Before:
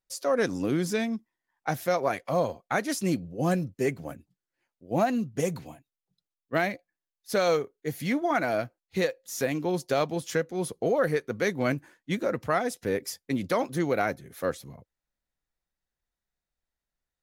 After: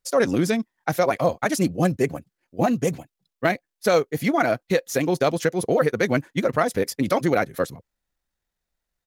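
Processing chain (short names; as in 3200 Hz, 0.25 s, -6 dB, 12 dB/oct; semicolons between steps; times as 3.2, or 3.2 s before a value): tempo 1.9×; gain +6.5 dB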